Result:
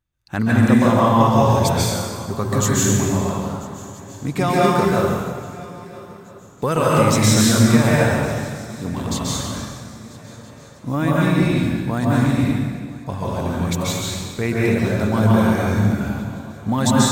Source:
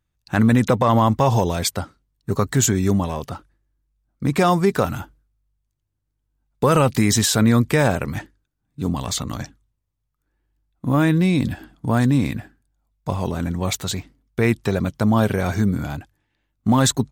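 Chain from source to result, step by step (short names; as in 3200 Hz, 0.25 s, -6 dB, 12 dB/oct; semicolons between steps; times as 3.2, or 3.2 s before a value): swung echo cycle 1.321 s, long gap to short 3:1, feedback 47%, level -21.5 dB; plate-style reverb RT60 1.7 s, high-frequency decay 0.85×, pre-delay 0.12 s, DRR -6 dB; gain -4.5 dB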